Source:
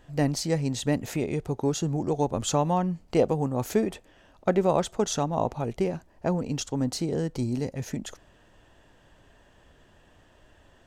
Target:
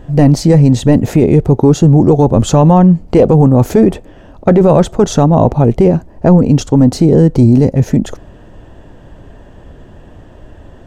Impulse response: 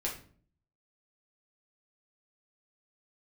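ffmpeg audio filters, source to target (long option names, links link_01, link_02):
-af "tiltshelf=frequency=920:gain=8,apsyclip=17dB,volume=-1.5dB"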